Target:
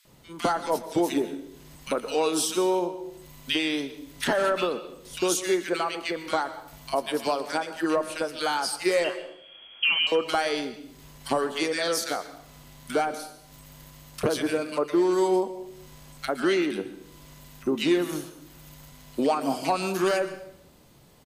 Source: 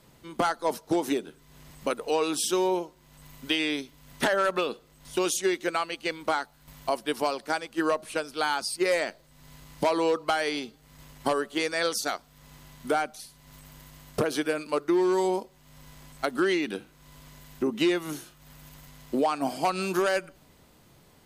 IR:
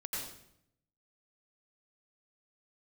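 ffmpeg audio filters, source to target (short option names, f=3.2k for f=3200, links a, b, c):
-filter_complex "[0:a]asettb=1/sr,asplit=3[a][b][c];[a]atrim=end=9.044[d];[b]atrim=start=9.04:end=10.07,asetpts=PTS-STARTPTS,afade=t=in:d=0.004:c=qsin,afade=t=out:st=1.026:d=0.004:c=qsin,lowpass=f=2.9k:t=q:w=0.5098,lowpass=f=2.9k:t=q:w=0.6013,lowpass=f=2.9k:t=q:w=0.9,lowpass=f=2.9k:t=q:w=2.563,afreqshift=-3400[e];[c]atrim=start=10.066[f];[d][e]acrossfade=d=0.004:c1=hsin:c2=qsin[g];[g][f]acrossfade=d=0.004:c1=qsin:c2=hsin,acrossover=split=1600[h][i];[h]adelay=50[j];[j][i]amix=inputs=2:normalize=0,asplit=2[k][l];[1:a]atrim=start_sample=2205,adelay=29[m];[l][m]afir=irnorm=-1:irlink=0,volume=-13dB[n];[k][n]amix=inputs=2:normalize=0,volume=1.5dB"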